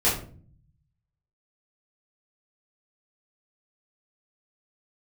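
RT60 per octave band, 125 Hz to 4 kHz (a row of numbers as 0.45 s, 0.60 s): 1.3 s, 0.90 s, 0.55 s, 0.40 s, 0.35 s, 0.30 s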